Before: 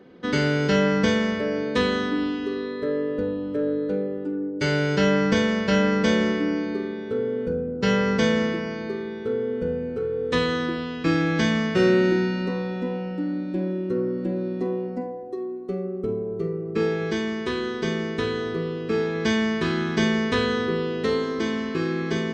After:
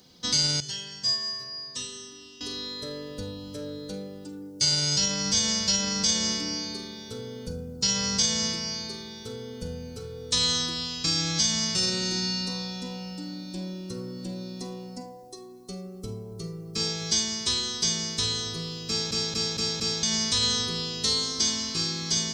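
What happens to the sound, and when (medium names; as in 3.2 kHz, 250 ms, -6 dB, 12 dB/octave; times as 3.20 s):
0.60–2.41 s: inharmonic resonator 130 Hz, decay 0.37 s, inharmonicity 0.002
18.88 s: stutter in place 0.23 s, 5 plays
whole clip: FFT filter 110 Hz 0 dB, 390 Hz -18 dB, 860 Hz -10 dB, 1.7 kHz -21 dB, 2.7 kHz -13 dB, 5.1 kHz +7 dB; peak limiter -25 dBFS; tilt shelf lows -7.5 dB, about 1.2 kHz; trim +8 dB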